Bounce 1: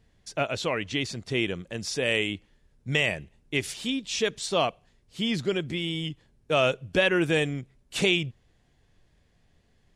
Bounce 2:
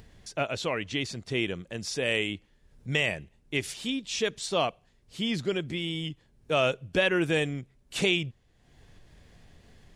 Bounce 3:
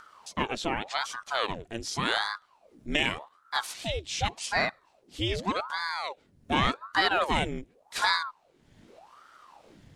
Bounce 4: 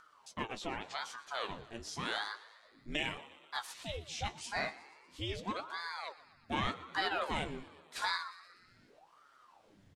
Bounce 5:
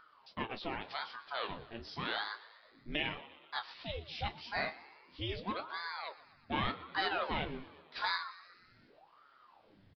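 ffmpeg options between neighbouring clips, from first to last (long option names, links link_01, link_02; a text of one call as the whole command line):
ffmpeg -i in.wav -af "acompressor=mode=upward:threshold=-40dB:ratio=2.5,volume=-2dB" out.wav
ffmpeg -i in.wav -af "aeval=exprs='val(0)*sin(2*PI*730*n/s+730*0.85/0.86*sin(2*PI*0.86*n/s))':channel_layout=same,volume=2.5dB" out.wav
ffmpeg -i in.wav -filter_complex "[0:a]flanger=delay=6:depth=9.2:regen=51:speed=0.33:shape=triangular,asplit=7[link_01][link_02][link_03][link_04][link_05][link_06][link_07];[link_02]adelay=120,afreqshift=77,volume=-18dB[link_08];[link_03]adelay=240,afreqshift=154,volume=-22.2dB[link_09];[link_04]adelay=360,afreqshift=231,volume=-26.3dB[link_10];[link_05]adelay=480,afreqshift=308,volume=-30.5dB[link_11];[link_06]adelay=600,afreqshift=385,volume=-34.6dB[link_12];[link_07]adelay=720,afreqshift=462,volume=-38.8dB[link_13];[link_01][link_08][link_09][link_10][link_11][link_12][link_13]amix=inputs=7:normalize=0,volume=-5.5dB" out.wav
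ffmpeg -i in.wav -filter_complex "[0:a]aresample=11025,aresample=44100,asplit=2[link_01][link_02];[link_02]adelay=27,volume=-14dB[link_03];[link_01][link_03]amix=inputs=2:normalize=0" out.wav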